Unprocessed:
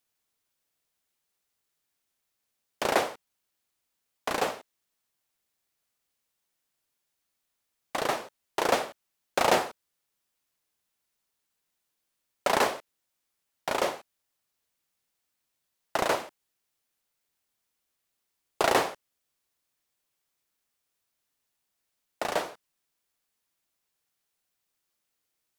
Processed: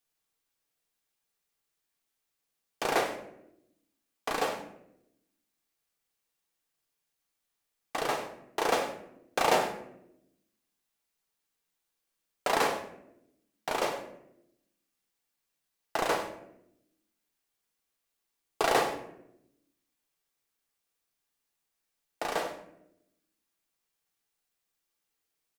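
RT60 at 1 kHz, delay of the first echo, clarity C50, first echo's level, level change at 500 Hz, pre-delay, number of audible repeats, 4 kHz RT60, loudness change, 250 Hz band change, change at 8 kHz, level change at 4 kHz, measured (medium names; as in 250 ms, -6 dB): 0.65 s, 98 ms, 9.0 dB, -14.5 dB, -2.0 dB, 3 ms, 1, 0.45 s, -2.5 dB, -2.0 dB, -2.5 dB, -2.5 dB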